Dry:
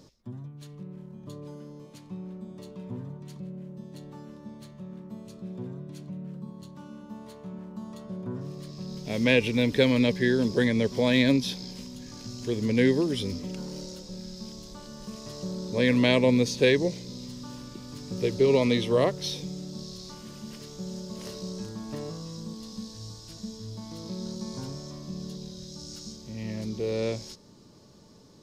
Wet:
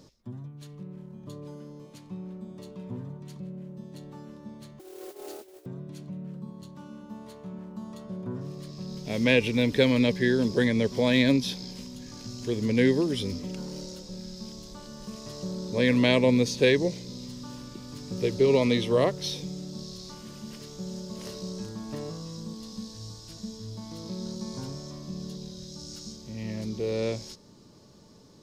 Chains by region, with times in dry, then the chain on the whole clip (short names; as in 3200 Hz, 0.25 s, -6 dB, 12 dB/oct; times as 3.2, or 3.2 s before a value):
4.79–5.66 negative-ratio compressor -44 dBFS, ratio -0.5 + frequency shift +190 Hz + modulation noise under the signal 10 dB
whole clip: dry